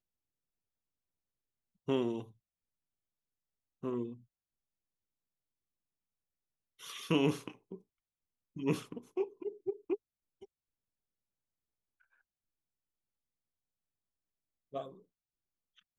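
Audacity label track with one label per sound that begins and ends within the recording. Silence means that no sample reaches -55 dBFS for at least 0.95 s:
1.880000	2.320000	sound
3.830000	4.210000	sound
6.790000	10.450000	sound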